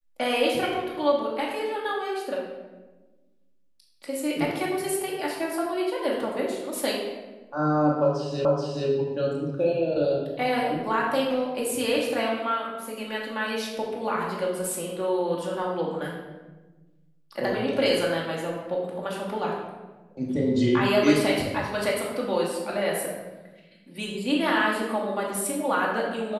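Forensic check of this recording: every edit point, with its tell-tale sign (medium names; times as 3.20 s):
8.45 s: repeat of the last 0.43 s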